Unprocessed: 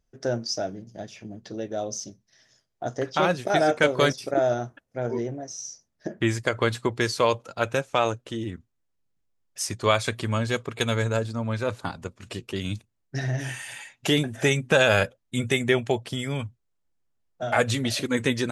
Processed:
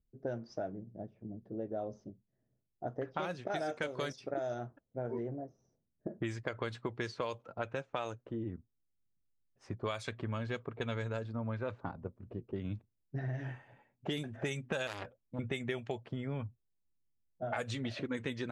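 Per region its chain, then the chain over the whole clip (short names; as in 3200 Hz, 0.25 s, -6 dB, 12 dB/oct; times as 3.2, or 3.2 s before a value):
14.87–15.39 high shelf 9300 Hz +9.5 dB + core saturation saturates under 3400 Hz
whole clip: low-pass opened by the level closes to 310 Hz, open at -17 dBFS; compressor, threshold -29 dBFS; gain -5 dB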